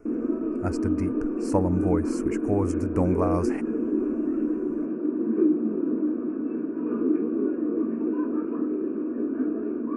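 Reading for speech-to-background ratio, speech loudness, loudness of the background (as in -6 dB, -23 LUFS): -2.0 dB, -29.0 LUFS, -27.0 LUFS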